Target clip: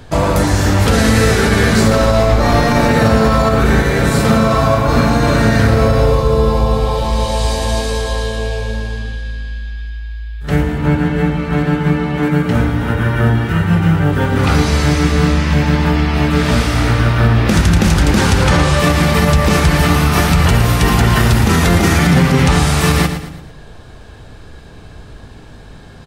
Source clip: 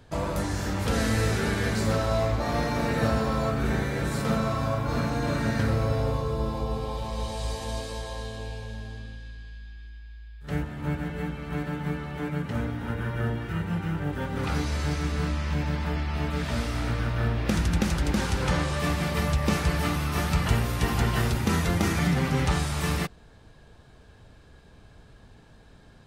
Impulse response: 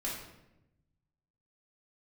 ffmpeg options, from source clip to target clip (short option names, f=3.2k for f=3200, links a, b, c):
-filter_complex "[0:a]asettb=1/sr,asplit=3[a][b][c];[a]atrim=end=1.844[d];[b]atrim=start=1.84:end=2.85,asetpts=PTS-STARTPTS,afade=t=in:d=0.004:c=qsin,afade=t=out:st=1.006:d=0.004:c=qsin,aeval=exprs='0.224*(cos(1*acos(clip(val(0)/0.224,-1,1)))-cos(1*PI/2))+0.00316*(cos(6*acos(clip(val(0)/0.224,-1,1)))-cos(6*PI/2))':c=same[e];[c]atrim=start=2.846[f];[d][e]acrossfade=d=0.004:c1=hsin:c2=qsin[g];[g][f]acrossfade=d=0.004:c1=qsin:c2=hsin,asettb=1/sr,asplit=3[h][i][j];[h]atrim=end=10.784[k];[i]atrim=start=10.78:end=12.23,asetpts=PTS-STARTPTS,afade=t=in:d=0.004:c=qsin,afade=t=out:st=1.446:d=0.004:c=qsin,highshelf=f=9.4k:g=-9.5[l];[j]atrim=start=12.226[m];[k][l]acrossfade=d=0.004:c1=hsin:c2=qsin[n];[n][m]acrossfade=d=0.004:c1=qsin:c2=hsin,aecho=1:1:113|226|339|452:0.282|0.116|0.0474|0.0194,asplit=2[o][p];[1:a]atrim=start_sample=2205,asetrate=57330,aresample=44100[q];[p][q]afir=irnorm=-1:irlink=0,volume=-12dB[r];[o][r]amix=inputs=2:normalize=0,alimiter=level_in=15dB:limit=-1dB:release=50:level=0:latency=1,volume=-1dB"